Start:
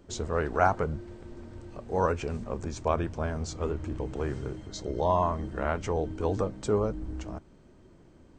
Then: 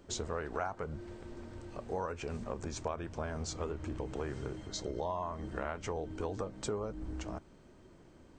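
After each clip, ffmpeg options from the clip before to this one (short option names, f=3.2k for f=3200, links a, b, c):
-af "lowshelf=f=410:g=-5,acompressor=threshold=-35dB:ratio=5,volume=1dB"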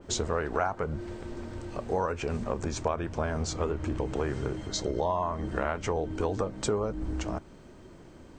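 -af "adynamicequalizer=threshold=0.002:dfrequency=3100:dqfactor=0.7:tfrequency=3100:tqfactor=0.7:attack=5:release=100:ratio=0.375:range=2:mode=cutabove:tftype=highshelf,volume=8dB"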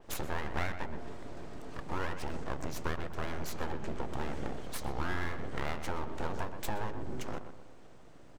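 -filter_complex "[0:a]aeval=exprs='abs(val(0))':c=same,asplit=2[a][b];[b]adelay=124,lowpass=f=2.3k:p=1,volume=-9dB,asplit=2[c][d];[d]adelay=124,lowpass=f=2.3k:p=1,volume=0.47,asplit=2[e][f];[f]adelay=124,lowpass=f=2.3k:p=1,volume=0.47,asplit=2[g][h];[h]adelay=124,lowpass=f=2.3k:p=1,volume=0.47,asplit=2[i][j];[j]adelay=124,lowpass=f=2.3k:p=1,volume=0.47[k];[a][c][e][g][i][k]amix=inputs=6:normalize=0,volume=-4.5dB"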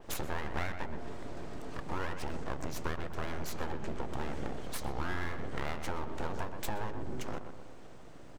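-af "acompressor=threshold=-41dB:ratio=1.5,volume=4dB"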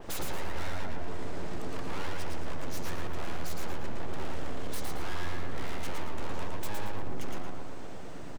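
-filter_complex "[0:a]asoftclip=type=tanh:threshold=-34dB,asplit=2[a][b];[b]aecho=0:1:113|226|339|452:0.668|0.201|0.0602|0.018[c];[a][c]amix=inputs=2:normalize=0,volume=7.5dB"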